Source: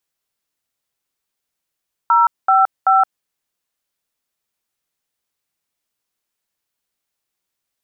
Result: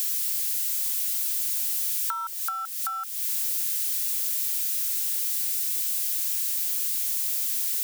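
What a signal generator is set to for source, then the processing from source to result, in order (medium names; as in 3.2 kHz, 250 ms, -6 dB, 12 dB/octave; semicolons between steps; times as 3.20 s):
DTMF "055", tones 170 ms, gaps 213 ms, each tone -12 dBFS
zero-crossing glitches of -23 dBFS; compression 10:1, threshold -22 dBFS; high-pass 1.4 kHz 24 dB/octave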